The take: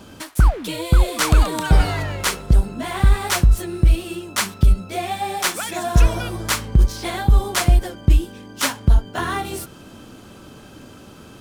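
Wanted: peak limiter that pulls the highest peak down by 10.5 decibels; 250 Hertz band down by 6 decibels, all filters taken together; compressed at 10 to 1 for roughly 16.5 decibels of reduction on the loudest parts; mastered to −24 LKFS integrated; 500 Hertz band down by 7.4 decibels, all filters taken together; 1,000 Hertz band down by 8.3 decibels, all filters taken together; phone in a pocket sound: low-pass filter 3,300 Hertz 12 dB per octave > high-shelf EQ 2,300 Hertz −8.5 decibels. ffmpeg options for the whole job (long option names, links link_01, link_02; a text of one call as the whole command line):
ffmpeg -i in.wav -af "equalizer=frequency=250:width_type=o:gain=-8,equalizer=frequency=500:width_type=o:gain=-4.5,equalizer=frequency=1000:width_type=o:gain=-7.5,acompressor=threshold=-26dB:ratio=10,alimiter=limit=-22.5dB:level=0:latency=1,lowpass=3300,highshelf=frequency=2300:gain=-8.5,volume=12.5dB" out.wav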